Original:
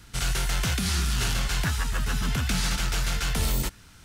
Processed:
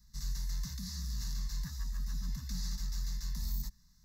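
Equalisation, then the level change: amplifier tone stack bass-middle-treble 6-0-2; static phaser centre 480 Hz, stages 8; static phaser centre 2.1 kHz, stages 8; +6.0 dB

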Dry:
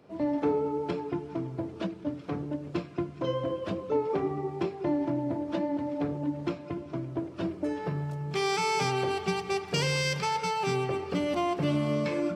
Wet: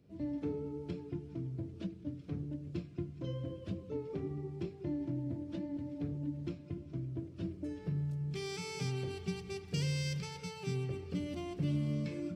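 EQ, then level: amplifier tone stack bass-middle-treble 10-0-1; +11.0 dB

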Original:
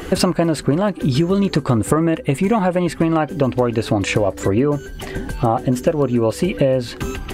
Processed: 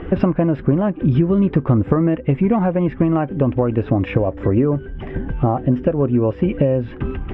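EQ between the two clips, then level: Savitzky-Golay filter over 25 samples; distance through air 250 m; bass shelf 410 Hz +7.5 dB; -4.0 dB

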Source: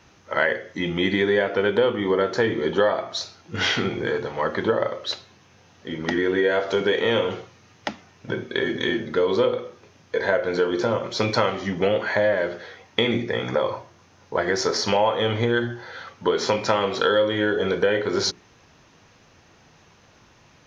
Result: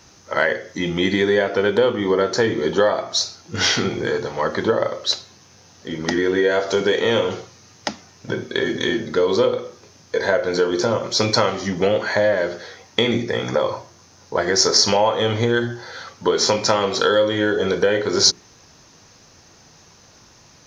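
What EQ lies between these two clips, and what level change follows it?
resonant high shelf 3.9 kHz +7.5 dB, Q 1.5; +3.0 dB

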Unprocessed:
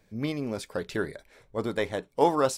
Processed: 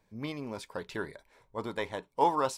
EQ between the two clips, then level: dynamic bell 2.8 kHz, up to +4 dB, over -45 dBFS, Q 0.8; peaking EQ 960 Hz +11.5 dB 0.37 oct; -7.5 dB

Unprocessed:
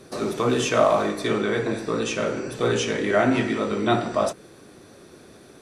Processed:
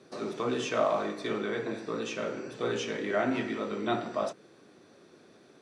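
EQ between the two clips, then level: band-pass 150–6100 Hz; -8.5 dB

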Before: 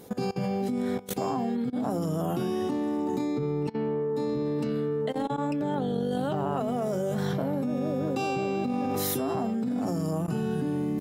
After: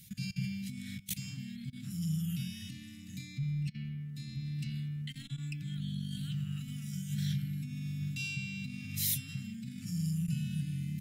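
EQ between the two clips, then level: elliptic band-stop 160–2300 Hz, stop band 50 dB; 0.0 dB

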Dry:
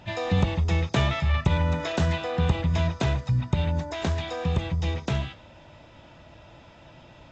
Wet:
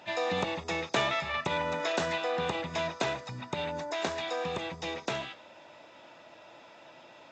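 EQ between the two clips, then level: high-pass 370 Hz 12 dB/octave; band-stop 3.1 kHz, Q 18; 0.0 dB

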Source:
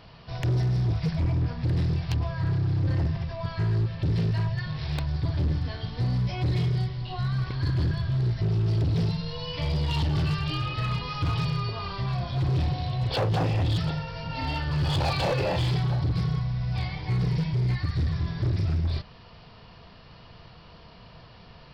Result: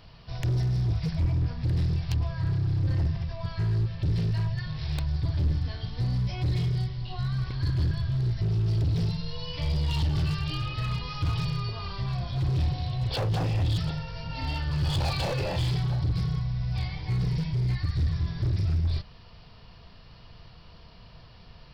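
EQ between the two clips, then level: bass shelf 88 Hz +11.5 dB; treble shelf 4.1 kHz +8.5 dB; -5.5 dB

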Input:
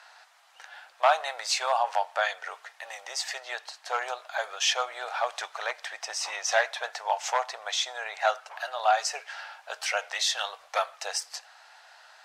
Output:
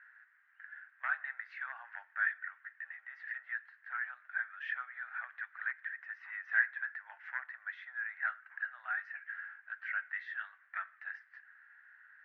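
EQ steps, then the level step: Butterworth band-pass 1.7 kHz, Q 3.7; distance through air 180 m; +1.0 dB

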